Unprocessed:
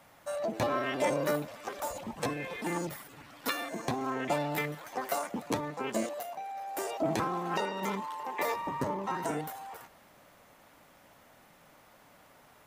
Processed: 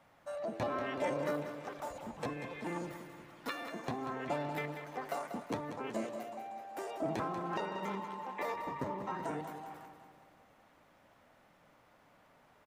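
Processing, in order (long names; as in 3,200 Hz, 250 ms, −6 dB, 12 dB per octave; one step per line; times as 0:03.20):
low-pass filter 3,000 Hz 6 dB per octave
on a send: repeating echo 189 ms, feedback 54%, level −9.5 dB
on the sum: level −5.5 dB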